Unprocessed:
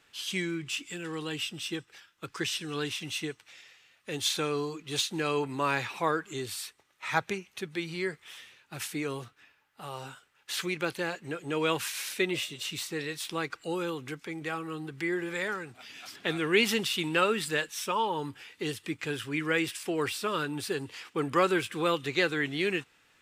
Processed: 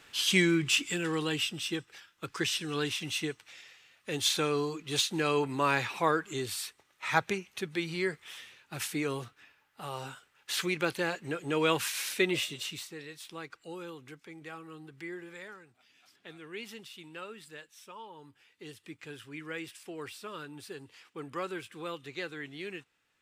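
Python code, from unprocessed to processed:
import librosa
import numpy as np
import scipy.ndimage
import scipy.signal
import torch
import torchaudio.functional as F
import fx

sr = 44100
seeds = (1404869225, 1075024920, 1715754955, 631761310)

y = fx.gain(x, sr, db=fx.line((0.79, 7.5), (1.64, 1.0), (12.55, 1.0), (12.96, -10.0), (15.07, -10.0), (15.88, -18.0), (18.17, -18.0), (18.87, -11.5)))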